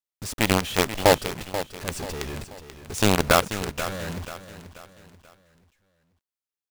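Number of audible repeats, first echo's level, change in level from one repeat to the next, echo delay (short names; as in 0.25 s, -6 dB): 3, -12.0 dB, -8.0 dB, 0.485 s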